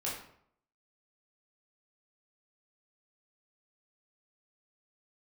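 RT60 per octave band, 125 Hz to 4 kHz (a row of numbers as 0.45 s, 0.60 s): 0.70 s, 0.65 s, 0.65 s, 0.65 s, 0.55 s, 0.45 s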